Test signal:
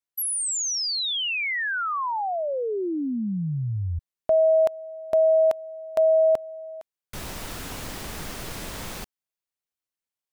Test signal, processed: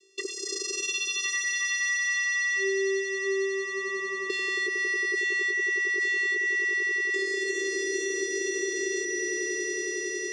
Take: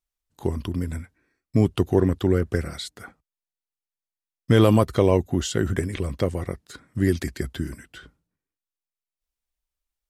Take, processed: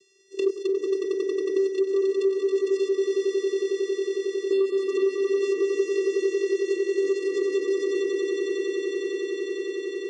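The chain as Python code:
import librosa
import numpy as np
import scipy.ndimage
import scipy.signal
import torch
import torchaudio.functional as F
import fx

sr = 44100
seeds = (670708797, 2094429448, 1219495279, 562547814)

p1 = fx.lower_of_two(x, sr, delay_ms=2.8)
p2 = scipy.signal.sosfilt(scipy.signal.cheby2(4, 40, [570.0, 1600.0], 'bandstop', fs=sr, output='sos'), p1)
p3 = fx.hum_notches(p2, sr, base_hz=50, count=4)
p4 = fx.over_compress(p3, sr, threshold_db=-41.0, ratio=-1.0)
p5 = p3 + F.gain(torch.from_numpy(p4), 1.0).numpy()
p6 = fx.vocoder(p5, sr, bands=8, carrier='square', carrier_hz=389.0)
p7 = 10.0 ** (-15.0 / 20.0) * np.tanh(p6 / 10.0 ** (-15.0 / 20.0))
p8 = p7 + fx.echo_swell(p7, sr, ms=91, loudest=5, wet_db=-5.0, dry=0)
p9 = fx.band_squash(p8, sr, depth_pct=100)
y = F.gain(torch.from_numpy(p9), 4.5).numpy()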